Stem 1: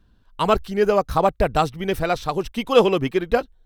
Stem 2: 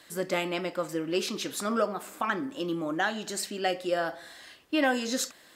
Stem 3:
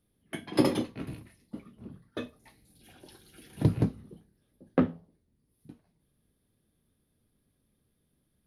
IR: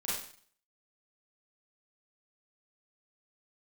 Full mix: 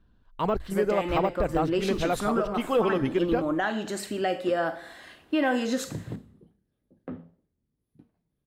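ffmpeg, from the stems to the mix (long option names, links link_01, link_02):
-filter_complex "[0:a]deesser=0.8,highshelf=frequency=4400:gain=-12,bandreject=frequency=50:width_type=h:width=6,bandreject=frequency=100:width_type=h:width=6,bandreject=frequency=150:width_type=h:width=6,volume=-9dB[link_01];[1:a]equalizer=frequency=5200:width_type=o:width=0.83:gain=-4,adelay=600,volume=-0.5dB,asplit=2[link_02][link_03];[link_03]volume=-21.5dB[link_04];[2:a]alimiter=limit=-19dB:level=0:latency=1:release=120,adelay=2300,volume=-11.5dB,asplit=2[link_05][link_06];[link_06]volume=-23.5dB[link_07];[link_02][link_05]amix=inputs=2:normalize=0,highshelf=frequency=3400:gain=-11.5,alimiter=limit=-22.5dB:level=0:latency=1:release=110,volume=0dB[link_08];[3:a]atrim=start_sample=2205[link_09];[link_04][link_07]amix=inputs=2:normalize=0[link_10];[link_10][link_09]afir=irnorm=-1:irlink=0[link_11];[link_01][link_08][link_11]amix=inputs=3:normalize=0,acontrast=37,alimiter=limit=-14.5dB:level=0:latency=1:release=179"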